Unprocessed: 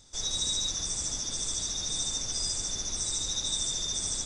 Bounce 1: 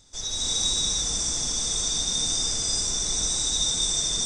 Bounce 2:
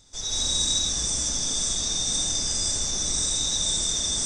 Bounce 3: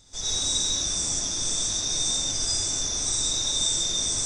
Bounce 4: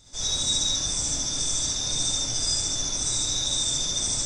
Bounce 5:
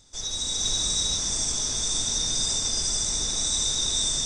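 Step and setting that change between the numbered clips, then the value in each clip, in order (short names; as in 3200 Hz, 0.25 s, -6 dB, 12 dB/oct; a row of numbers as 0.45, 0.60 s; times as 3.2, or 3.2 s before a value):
non-linear reverb, gate: 350, 240, 150, 90, 520 ms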